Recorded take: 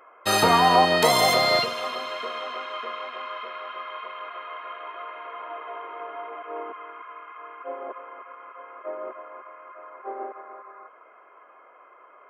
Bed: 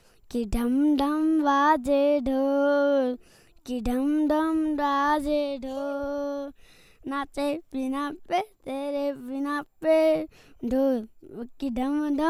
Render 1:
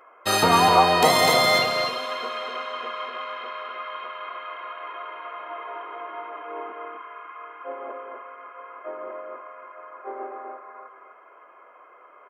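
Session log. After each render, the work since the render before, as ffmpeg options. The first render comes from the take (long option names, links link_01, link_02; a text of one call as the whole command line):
ffmpeg -i in.wav -filter_complex "[0:a]asplit=2[link_01][link_02];[link_02]adelay=12,volume=-13dB[link_03];[link_01][link_03]amix=inputs=2:normalize=0,asplit=2[link_04][link_05];[link_05]aecho=0:1:250:0.562[link_06];[link_04][link_06]amix=inputs=2:normalize=0" out.wav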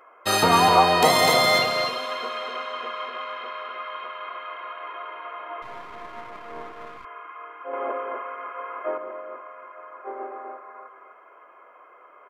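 ffmpeg -i in.wav -filter_complex "[0:a]asettb=1/sr,asplit=3[link_01][link_02][link_03];[link_01]atrim=end=5.624[link_04];[link_02]atrim=start=5.62:end=7.05,asetpts=PTS-STARTPTS,afade=type=in:duration=0.004:curve=qsin,afade=type=out:start_time=1.426:duration=0.004:curve=qsin,aeval=exprs='if(lt(val(0),0),0.251*val(0),val(0))':channel_layout=same[link_05];[link_03]atrim=start=7.046[link_06];[link_04][link_05]acrossfade=duration=0.004:curve1=hsin:curve2=qsin[link_07];[link_07][link_06]acrossfade=duration=0.004:curve1=qsin:curve2=hsin,asettb=1/sr,asplit=3[link_08][link_09][link_10];[link_08]atrim=end=7.734[link_11];[link_09]atrim=start=7.73:end=8.98,asetpts=PTS-STARTPTS,afade=type=in:duration=0.004:curve=qsin,afade=type=out:start_time=1.246:duration=0.004:curve=qsin,acontrast=79[link_12];[link_10]atrim=start=8.976[link_13];[link_11][link_12]acrossfade=duration=0.004:curve1=hsin:curve2=qsin[link_14];[link_14][link_13]acrossfade=duration=0.004:curve1=qsin:curve2=hsin" out.wav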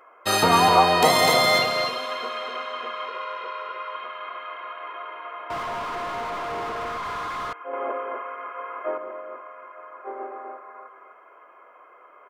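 ffmpeg -i in.wav -filter_complex "[0:a]asettb=1/sr,asplit=3[link_01][link_02][link_03];[link_01]atrim=end=3.074[link_04];[link_02]atrim=start=3.07:end=3.96,asetpts=PTS-STARTPTS,afade=type=in:duration=0.004:curve=qsin,afade=type=out:start_time=0.886:duration=0.004:curve=qsin,aecho=1:1:2.1:0.61,atrim=end_sample=39249[link_05];[link_03]atrim=start=3.956[link_06];[link_04][link_05]acrossfade=duration=0.004:curve1=hsin:curve2=qsin[link_07];[link_07][link_06]acrossfade=duration=0.004:curve1=qsin:curve2=hsin,asettb=1/sr,asplit=3[link_08][link_09][link_10];[link_08]atrim=end=5.504[link_11];[link_09]atrim=start=5.5:end=7.53,asetpts=PTS-STARTPTS,afade=type=in:duration=0.004:curve=qsin,afade=type=out:start_time=2.026:duration=0.004:curve=qsin,asplit=2[link_12][link_13];[link_13]highpass=frequency=720:poles=1,volume=39dB,asoftclip=type=tanh:threshold=-22dB[link_14];[link_12][link_14]amix=inputs=2:normalize=0,lowpass=frequency=1400:poles=1,volume=-6dB[link_15];[link_10]atrim=start=7.526[link_16];[link_11][link_15]acrossfade=duration=0.004:curve1=hsin:curve2=qsin[link_17];[link_17][link_16]acrossfade=duration=0.004:curve1=qsin:curve2=hsin" out.wav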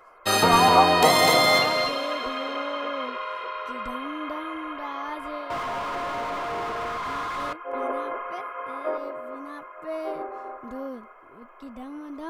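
ffmpeg -i in.wav -i bed.wav -filter_complex "[1:a]volume=-12dB[link_01];[0:a][link_01]amix=inputs=2:normalize=0" out.wav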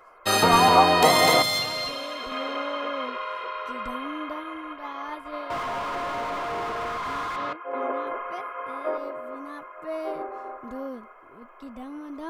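ffmpeg -i in.wav -filter_complex "[0:a]asettb=1/sr,asplit=3[link_01][link_02][link_03];[link_01]atrim=end=1.424[link_04];[link_02]atrim=start=1.42:end=2.32,asetpts=PTS-STARTPTS,afade=type=in:duration=0.004:curve=qsin,afade=type=out:start_time=0.896:duration=0.004:curve=qsin,acrossover=split=140|3000[link_05][link_06][link_07];[link_06]acompressor=threshold=-33dB:ratio=3:attack=3.2:release=140:knee=2.83:detection=peak[link_08];[link_05][link_08][link_07]amix=inputs=3:normalize=0[link_09];[link_03]atrim=start=2.316[link_10];[link_04][link_09]acrossfade=duration=0.004:curve1=hsin:curve2=qsin[link_11];[link_11][link_10]acrossfade=duration=0.004:curve1=qsin:curve2=hsin,asplit=3[link_12][link_13][link_14];[link_12]afade=type=out:start_time=4.22:duration=0.02[link_15];[link_13]agate=range=-33dB:threshold=-31dB:ratio=3:release=100:detection=peak,afade=type=in:start_time=4.22:duration=0.02,afade=type=out:start_time=5.32:duration=0.02[link_16];[link_14]afade=type=in:start_time=5.32:duration=0.02[link_17];[link_15][link_16][link_17]amix=inputs=3:normalize=0,asettb=1/sr,asplit=3[link_18][link_19][link_20];[link_18]atrim=end=7.364[link_21];[link_19]atrim=start=7.36:end=8.07,asetpts=PTS-STARTPTS,afade=type=in:duration=0.004:curve=qsin,afade=type=out:start_time=0.706:duration=0.004:curve=qsin,highpass=110,lowpass=4300[link_22];[link_20]atrim=start=8.066[link_23];[link_21][link_22]acrossfade=duration=0.004:curve1=hsin:curve2=qsin[link_24];[link_24][link_23]acrossfade=duration=0.004:curve1=qsin:curve2=hsin" out.wav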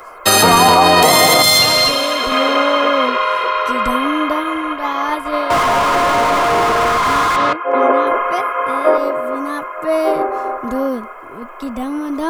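ffmpeg -i in.wav -filter_complex "[0:a]acrossover=split=120|6000[link_01][link_02][link_03];[link_03]acontrast=77[link_04];[link_01][link_02][link_04]amix=inputs=3:normalize=0,alimiter=level_in=16dB:limit=-1dB:release=50:level=0:latency=1" out.wav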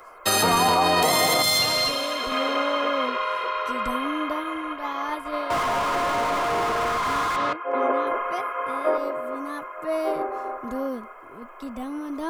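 ffmpeg -i in.wav -af "volume=-10dB" out.wav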